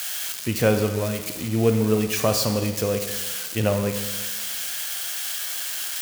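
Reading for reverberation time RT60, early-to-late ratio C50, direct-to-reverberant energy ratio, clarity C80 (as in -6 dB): 1.3 s, 7.5 dB, 6.0 dB, 9.0 dB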